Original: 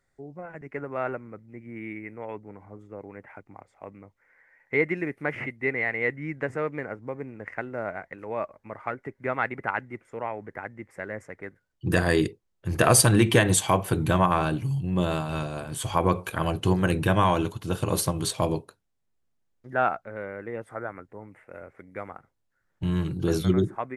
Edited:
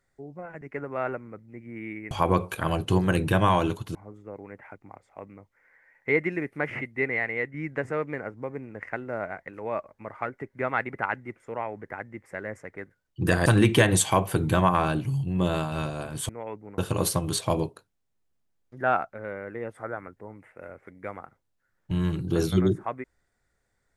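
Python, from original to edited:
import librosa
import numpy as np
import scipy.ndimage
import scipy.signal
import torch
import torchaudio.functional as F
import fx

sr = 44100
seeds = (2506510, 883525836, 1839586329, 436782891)

y = fx.edit(x, sr, fx.swap(start_s=2.11, length_s=0.49, other_s=15.86, other_length_s=1.84),
    fx.fade_out_to(start_s=5.73, length_s=0.46, curve='qsin', floor_db=-6.5),
    fx.cut(start_s=12.11, length_s=0.92), tone=tone)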